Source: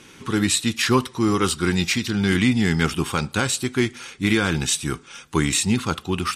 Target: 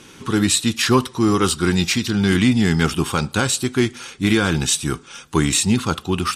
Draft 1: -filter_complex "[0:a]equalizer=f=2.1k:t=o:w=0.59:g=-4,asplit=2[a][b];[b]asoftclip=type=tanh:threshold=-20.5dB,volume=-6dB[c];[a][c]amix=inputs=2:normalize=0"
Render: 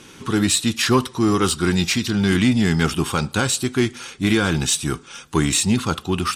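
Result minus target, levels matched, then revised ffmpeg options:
soft clip: distortion +10 dB
-filter_complex "[0:a]equalizer=f=2.1k:t=o:w=0.59:g=-4,asplit=2[a][b];[b]asoftclip=type=tanh:threshold=-11dB,volume=-6dB[c];[a][c]amix=inputs=2:normalize=0"

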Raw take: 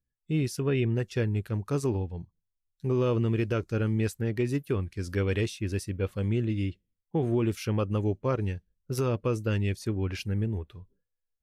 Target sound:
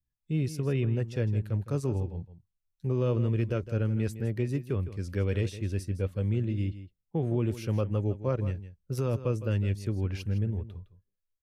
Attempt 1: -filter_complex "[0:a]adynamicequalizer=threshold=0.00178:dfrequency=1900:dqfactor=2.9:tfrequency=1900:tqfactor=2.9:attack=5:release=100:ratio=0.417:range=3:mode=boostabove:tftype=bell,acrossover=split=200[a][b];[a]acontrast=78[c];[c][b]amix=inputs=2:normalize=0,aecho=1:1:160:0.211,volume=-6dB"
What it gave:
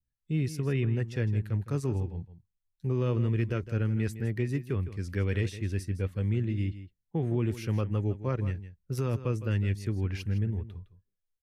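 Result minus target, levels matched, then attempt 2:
2000 Hz band +3.5 dB
-filter_complex "[0:a]adynamicequalizer=threshold=0.00178:dfrequency=560:dqfactor=2.9:tfrequency=560:tqfactor=2.9:attack=5:release=100:ratio=0.417:range=3:mode=boostabove:tftype=bell,acrossover=split=200[a][b];[a]acontrast=78[c];[c][b]amix=inputs=2:normalize=0,aecho=1:1:160:0.211,volume=-6dB"

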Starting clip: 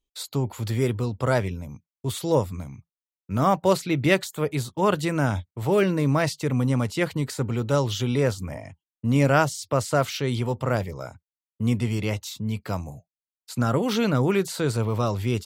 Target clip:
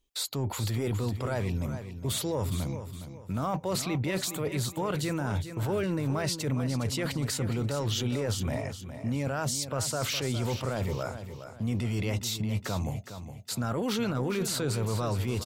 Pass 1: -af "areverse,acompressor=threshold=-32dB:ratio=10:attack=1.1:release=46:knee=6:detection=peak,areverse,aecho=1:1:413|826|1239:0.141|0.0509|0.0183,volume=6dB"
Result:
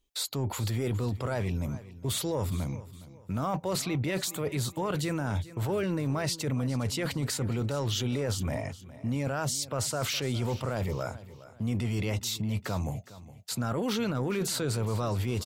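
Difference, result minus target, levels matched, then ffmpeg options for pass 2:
echo-to-direct -6.5 dB
-af "areverse,acompressor=threshold=-32dB:ratio=10:attack=1.1:release=46:knee=6:detection=peak,areverse,aecho=1:1:413|826|1239|1652:0.299|0.107|0.0387|0.0139,volume=6dB"

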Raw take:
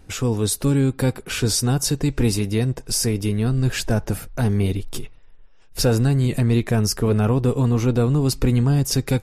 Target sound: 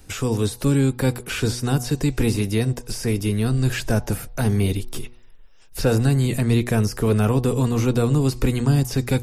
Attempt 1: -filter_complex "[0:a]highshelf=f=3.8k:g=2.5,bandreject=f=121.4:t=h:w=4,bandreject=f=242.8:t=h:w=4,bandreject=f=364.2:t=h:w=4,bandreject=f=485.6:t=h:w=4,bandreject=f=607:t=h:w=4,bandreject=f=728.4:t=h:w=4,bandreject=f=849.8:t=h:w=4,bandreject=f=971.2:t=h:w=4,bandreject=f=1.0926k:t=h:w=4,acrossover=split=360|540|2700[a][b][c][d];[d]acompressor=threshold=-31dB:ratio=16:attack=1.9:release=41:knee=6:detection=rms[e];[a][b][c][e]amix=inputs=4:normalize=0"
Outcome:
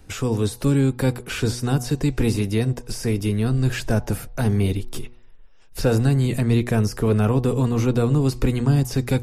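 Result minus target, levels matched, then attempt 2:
8000 Hz band -2.5 dB
-filter_complex "[0:a]highshelf=f=3.8k:g=11.5,bandreject=f=121.4:t=h:w=4,bandreject=f=242.8:t=h:w=4,bandreject=f=364.2:t=h:w=4,bandreject=f=485.6:t=h:w=4,bandreject=f=607:t=h:w=4,bandreject=f=728.4:t=h:w=4,bandreject=f=849.8:t=h:w=4,bandreject=f=971.2:t=h:w=4,bandreject=f=1.0926k:t=h:w=4,acrossover=split=360|540|2700[a][b][c][d];[d]acompressor=threshold=-31dB:ratio=16:attack=1.9:release=41:knee=6:detection=rms[e];[a][b][c][e]amix=inputs=4:normalize=0"

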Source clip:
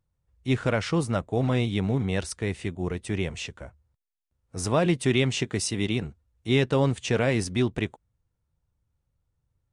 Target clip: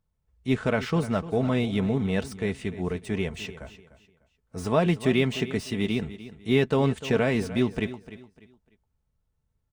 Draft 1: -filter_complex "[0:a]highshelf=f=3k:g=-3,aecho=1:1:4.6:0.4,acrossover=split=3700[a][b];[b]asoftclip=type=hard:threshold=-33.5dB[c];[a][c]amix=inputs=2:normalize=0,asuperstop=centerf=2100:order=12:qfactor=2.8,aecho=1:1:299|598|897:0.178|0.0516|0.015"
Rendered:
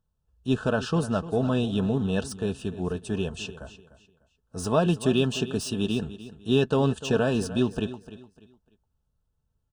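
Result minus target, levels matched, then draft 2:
hard clip: distortion -7 dB; 2000 Hz band -3.5 dB
-filter_complex "[0:a]highshelf=f=3k:g=-3,aecho=1:1:4.6:0.4,acrossover=split=3700[a][b];[b]asoftclip=type=hard:threshold=-44dB[c];[a][c]amix=inputs=2:normalize=0,aecho=1:1:299|598|897:0.178|0.0516|0.015"

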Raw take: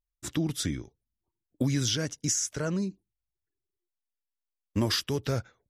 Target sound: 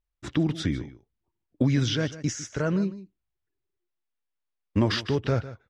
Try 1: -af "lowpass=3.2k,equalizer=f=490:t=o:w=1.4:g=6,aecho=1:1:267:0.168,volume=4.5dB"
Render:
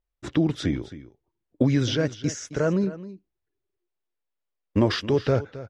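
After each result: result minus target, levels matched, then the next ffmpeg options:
echo 0.115 s late; 500 Hz band +3.0 dB
-af "lowpass=3.2k,equalizer=f=490:t=o:w=1.4:g=6,aecho=1:1:152:0.168,volume=4.5dB"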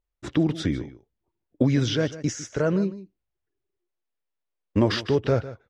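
500 Hz band +3.0 dB
-af "lowpass=3.2k,aecho=1:1:152:0.168,volume=4.5dB"

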